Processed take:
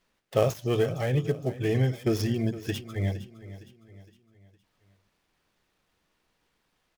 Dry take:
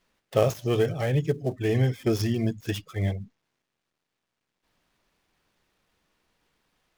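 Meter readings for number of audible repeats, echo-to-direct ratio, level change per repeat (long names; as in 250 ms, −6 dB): 3, −14.5 dB, −7.0 dB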